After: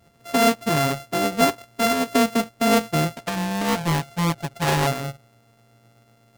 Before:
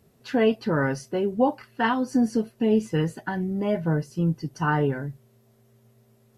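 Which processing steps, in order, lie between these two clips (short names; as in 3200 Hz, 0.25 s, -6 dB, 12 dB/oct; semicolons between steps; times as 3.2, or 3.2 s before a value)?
sample sorter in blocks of 64 samples; 3.16–4.87 Doppler distortion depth 0.93 ms; gain +2.5 dB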